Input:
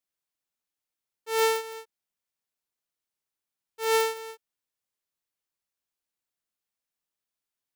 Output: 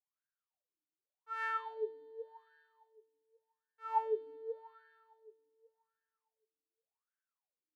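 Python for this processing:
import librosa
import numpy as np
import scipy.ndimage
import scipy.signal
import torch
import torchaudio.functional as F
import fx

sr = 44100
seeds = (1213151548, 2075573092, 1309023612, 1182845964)

y = fx.median_filter(x, sr, points=41, at=(1.74, 4.27))
y = fx.rev_spring(y, sr, rt60_s=2.6, pass_ms=(32, 54), chirp_ms=35, drr_db=-7.0)
y = fx.wah_lfo(y, sr, hz=0.87, low_hz=300.0, high_hz=1600.0, q=15.0)
y = y * librosa.db_to_amplitude(2.5)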